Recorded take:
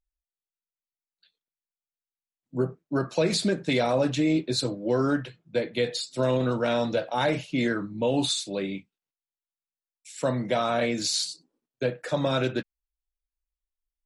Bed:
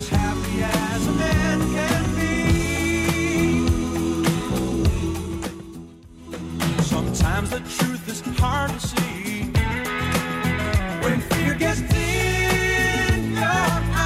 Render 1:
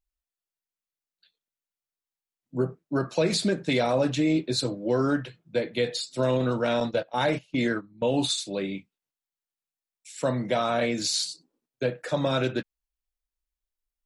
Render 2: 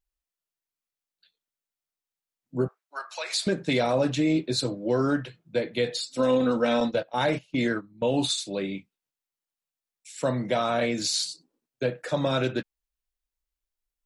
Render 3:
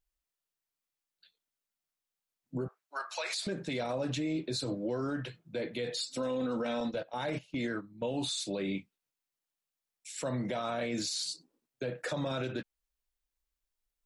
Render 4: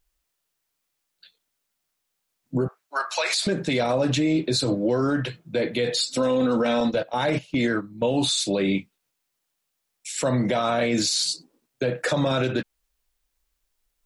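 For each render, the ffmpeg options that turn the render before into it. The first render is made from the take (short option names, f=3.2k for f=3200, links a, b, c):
-filter_complex "[0:a]asettb=1/sr,asplit=3[a][b][c];[a]atrim=end=6.804[d];[b]atrim=start=6.8:end=8.38,asetpts=PTS-STARTPTS,afade=t=in:d=0.004:c=qsin,afade=t=out:st=1.576:d=0.004:c=qsin,agate=range=-16dB:threshold=-30dB:ratio=16:release=100:detection=peak[e];[c]atrim=start=8.376[f];[d][e]acrossfade=d=0.004:c1=hsin:c2=qsin[g];[g][f]acrossfade=d=0.004:c1=qsin:c2=hsin"
-filter_complex "[0:a]asettb=1/sr,asplit=3[a][b][c];[a]atrim=end=2.684[d];[b]atrim=start=2.68:end=3.47,asetpts=PTS-STARTPTS,afade=t=in:d=0.004:c=qsin,afade=t=out:st=0.786:d=0.004:c=qsin,highpass=f=830:w=0.5412,highpass=f=830:w=1.3066[e];[c]atrim=start=3.466[f];[d][e]acrossfade=d=0.004:c1=hsin:c2=qsin[g];[g][f]acrossfade=d=0.004:c1=qsin:c2=hsin,asettb=1/sr,asplit=3[h][i][j];[h]atrim=end=6.024[k];[i]atrim=start=6.02:end=6.95,asetpts=PTS-STARTPTS,afade=t=in:d=0.004:c=qsin,afade=t=out:st=0.926:d=0.004:c=qsin,aecho=1:1:3.9:0.65,atrim=end_sample=41013[l];[j]atrim=start=6.946[m];[k][l]acrossfade=d=0.004:c1=hsin:c2=qsin[n];[n][m]acrossfade=d=0.004:c1=qsin:c2=hsin"
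-af "acompressor=threshold=-26dB:ratio=3,alimiter=level_in=2dB:limit=-24dB:level=0:latency=1:release=43,volume=-2dB"
-af "volume=11.5dB"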